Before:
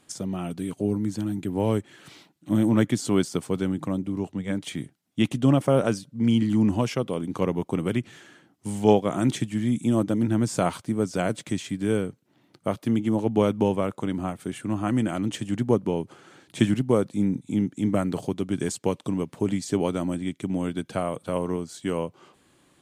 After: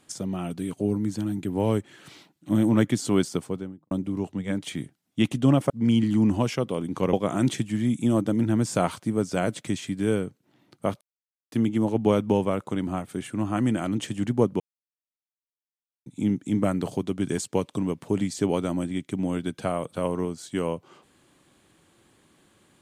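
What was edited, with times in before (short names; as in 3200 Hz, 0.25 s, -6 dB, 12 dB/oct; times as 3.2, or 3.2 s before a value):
3.27–3.91 studio fade out
5.7–6.09 cut
7.52–8.95 cut
12.83 insert silence 0.51 s
15.91–17.37 mute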